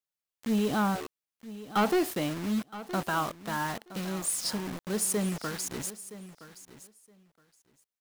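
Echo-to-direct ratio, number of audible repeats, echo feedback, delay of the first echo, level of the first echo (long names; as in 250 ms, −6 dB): −15.5 dB, 2, 16%, 969 ms, −15.5 dB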